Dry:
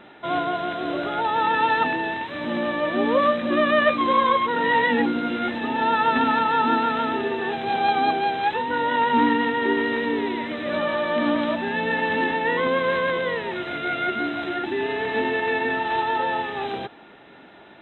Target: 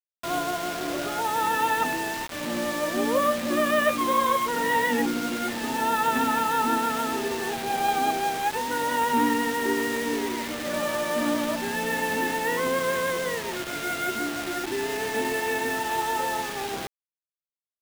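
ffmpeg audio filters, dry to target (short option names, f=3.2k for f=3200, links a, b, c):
-af "highshelf=f=3.4k:g=-2.5,acrusher=bits=4:mix=0:aa=0.000001,volume=-3.5dB"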